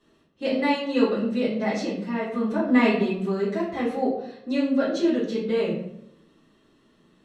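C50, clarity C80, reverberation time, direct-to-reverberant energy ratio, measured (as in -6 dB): 3.5 dB, 7.5 dB, 0.75 s, -9.5 dB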